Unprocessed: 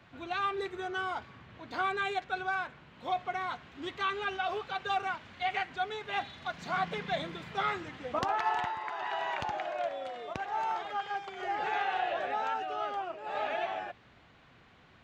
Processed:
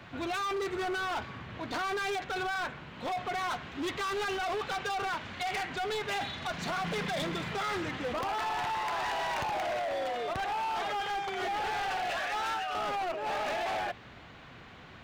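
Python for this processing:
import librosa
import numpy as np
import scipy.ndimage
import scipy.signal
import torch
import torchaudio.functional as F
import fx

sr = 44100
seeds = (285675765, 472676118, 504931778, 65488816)

p1 = fx.highpass(x, sr, hz=1100.0, slope=12, at=(12.1, 12.75))
p2 = fx.over_compress(p1, sr, threshold_db=-36.0, ratio=-0.5)
p3 = p1 + (p2 * 10.0 ** (2.5 / 20.0))
y = np.clip(10.0 ** (30.5 / 20.0) * p3, -1.0, 1.0) / 10.0 ** (30.5 / 20.0)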